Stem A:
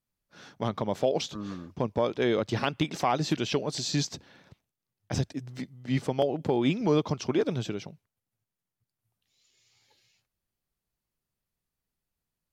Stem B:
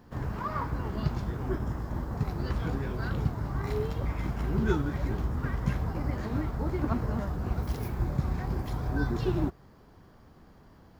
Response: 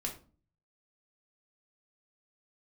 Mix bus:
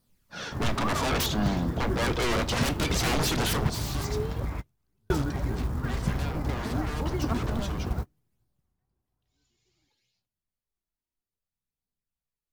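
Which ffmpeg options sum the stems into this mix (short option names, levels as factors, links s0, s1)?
-filter_complex "[0:a]asoftclip=type=hard:threshold=0.0447,flanger=delay=0.2:depth=3:regen=23:speed=0.59:shape=sinusoidal,aeval=exprs='0.0447*sin(PI/2*3.55*val(0)/0.0447)':c=same,volume=0.944,afade=t=out:st=3.43:d=0.4:silence=0.298538,afade=t=out:st=8.48:d=0.34:silence=0.237137,asplit=3[s0][s1][s2];[s1]volume=0.447[s3];[1:a]acrusher=bits=7:mode=log:mix=0:aa=0.000001,adelay=400,volume=1.06[s4];[s2]apad=whole_len=502426[s5];[s4][s5]sidechaingate=range=0.00316:threshold=0.00112:ratio=16:detection=peak[s6];[2:a]atrim=start_sample=2205[s7];[s3][s7]afir=irnorm=-1:irlink=0[s8];[s0][s6][s8]amix=inputs=3:normalize=0"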